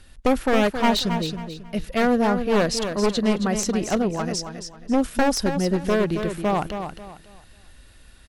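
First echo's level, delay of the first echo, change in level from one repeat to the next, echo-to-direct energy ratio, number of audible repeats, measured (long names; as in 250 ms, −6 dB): −8.0 dB, 271 ms, −10.5 dB, −7.5 dB, 3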